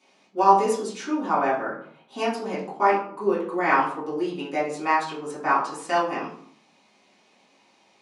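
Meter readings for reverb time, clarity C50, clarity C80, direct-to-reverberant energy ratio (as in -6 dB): 0.60 s, 5.5 dB, 9.5 dB, -9.0 dB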